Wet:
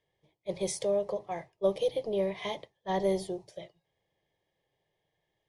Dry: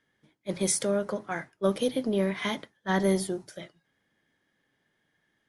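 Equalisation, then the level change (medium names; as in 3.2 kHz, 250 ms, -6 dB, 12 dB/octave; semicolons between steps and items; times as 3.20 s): treble shelf 4.8 kHz -8.5 dB; treble shelf 10 kHz -12 dB; static phaser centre 600 Hz, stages 4; +1.0 dB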